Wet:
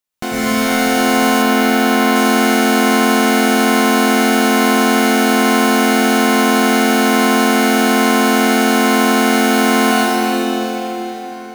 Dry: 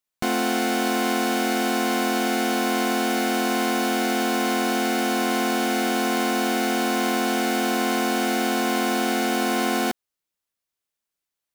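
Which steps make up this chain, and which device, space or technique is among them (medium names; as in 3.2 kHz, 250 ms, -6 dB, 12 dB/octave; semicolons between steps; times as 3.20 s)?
cathedral (reverberation RT60 5.1 s, pre-delay 91 ms, DRR -8.5 dB); 1.42–2.16 s: peaking EQ 7.8 kHz -4.5 dB 1.3 oct; trim +1.5 dB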